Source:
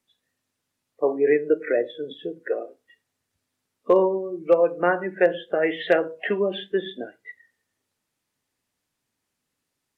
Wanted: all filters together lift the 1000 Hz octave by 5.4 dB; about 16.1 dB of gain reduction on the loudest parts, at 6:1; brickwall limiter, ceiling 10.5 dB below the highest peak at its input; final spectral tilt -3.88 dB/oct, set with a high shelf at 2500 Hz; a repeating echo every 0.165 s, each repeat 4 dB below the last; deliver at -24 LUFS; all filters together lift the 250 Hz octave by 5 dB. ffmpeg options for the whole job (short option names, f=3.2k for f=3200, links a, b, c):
-af "equalizer=f=250:t=o:g=7.5,equalizer=f=1k:t=o:g=7.5,highshelf=f=2.5k:g=-4.5,acompressor=threshold=-28dB:ratio=6,alimiter=level_in=0.5dB:limit=-24dB:level=0:latency=1,volume=-0.5dB,aecho=1:1:165|330|495|660|825|990|1155|1320|1485:0.631|0.398|0.25|0.158|0.0994|0.0626|0.0394|0.0249|0.0157,volume=9.5dB"